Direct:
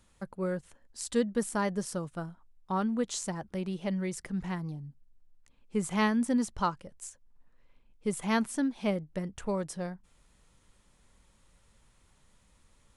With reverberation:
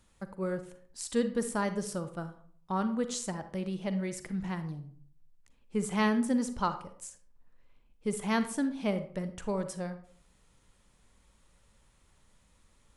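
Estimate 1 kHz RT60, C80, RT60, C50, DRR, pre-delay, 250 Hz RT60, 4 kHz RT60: 0.50 s, 15.5 dB, 0.50 s, 11.5 dB, 10.0 dB, 38 ms, 0.65 s, 0.35 s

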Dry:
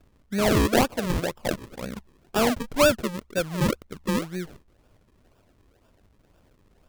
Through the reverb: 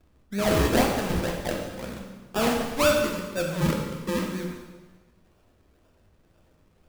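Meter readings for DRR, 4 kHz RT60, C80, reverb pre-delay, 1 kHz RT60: -0.5 dB, 1.2 s, 4.5 dB, 5 ms, 1.3 s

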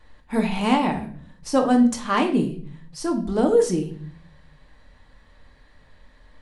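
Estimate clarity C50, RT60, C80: 10.5 dB, 0.50 s, 15.0 dB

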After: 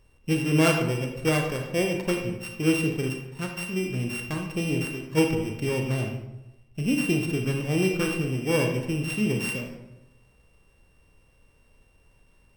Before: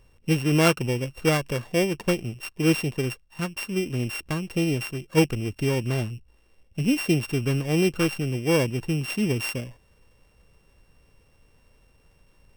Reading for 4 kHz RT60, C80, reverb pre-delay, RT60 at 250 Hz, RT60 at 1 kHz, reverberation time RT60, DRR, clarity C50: 0.60 s, 7.5 dB, 28 ms, 1.1 s, 0.90 s, 0.95 s, 2.5 dB, 4.5 dB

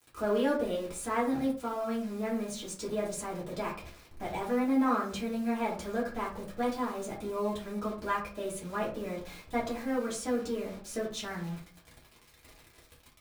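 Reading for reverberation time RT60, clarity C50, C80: 0.45 s, 7.5 dB, 12.5 dB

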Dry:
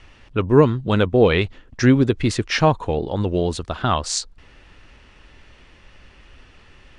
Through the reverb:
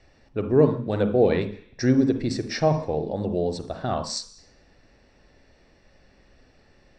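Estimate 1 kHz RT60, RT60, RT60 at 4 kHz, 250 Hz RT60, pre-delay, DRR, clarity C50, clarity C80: 0.50 s, 0.50 s, 0.85 s, 0.50 s, 38 ms, 7.5 dB, 9.5 dB, 13.5 dB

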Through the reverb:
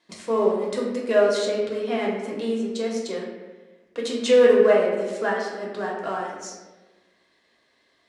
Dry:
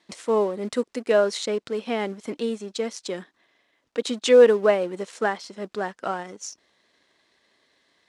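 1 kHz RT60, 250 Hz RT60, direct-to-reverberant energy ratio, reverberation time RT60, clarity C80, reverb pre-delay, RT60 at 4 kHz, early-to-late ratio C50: 1.1 s, 1.5 s, -3.5 dB, 1.2 s, 4.5 dB, 3 ms, 0.75 s, 2.0 dB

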